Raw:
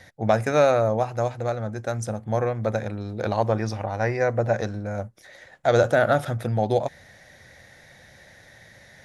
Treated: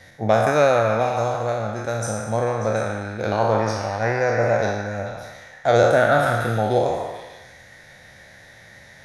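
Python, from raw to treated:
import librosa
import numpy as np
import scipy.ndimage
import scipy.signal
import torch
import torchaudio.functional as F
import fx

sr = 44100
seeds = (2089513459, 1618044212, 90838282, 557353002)

y = fx.spec_trails(x, sr, decay_s=1.1)
y = fx.echo_stepped(y, sr, ms=147, hz=1100.0, octaves=0.7, feedback_pct=70, wet_db=-2)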